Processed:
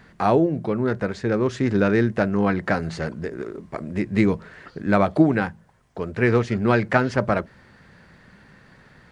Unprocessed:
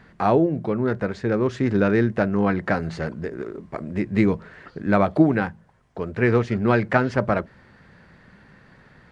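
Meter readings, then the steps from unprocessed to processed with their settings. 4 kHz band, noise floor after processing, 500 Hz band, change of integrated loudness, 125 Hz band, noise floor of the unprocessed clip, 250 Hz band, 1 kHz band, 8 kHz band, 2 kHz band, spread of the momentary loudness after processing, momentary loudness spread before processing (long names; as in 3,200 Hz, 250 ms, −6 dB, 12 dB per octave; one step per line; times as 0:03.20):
+3.0 dB, −53 dBFS, 0.0 dB, 0.0 dB, 0.0 dB, −53 dBFS, 0.0 dB, +0.5 dB, can't be measured, +1.0 dB, 12 LU, 12 LU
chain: high-shelf EQ 4,900 Hz +8 dB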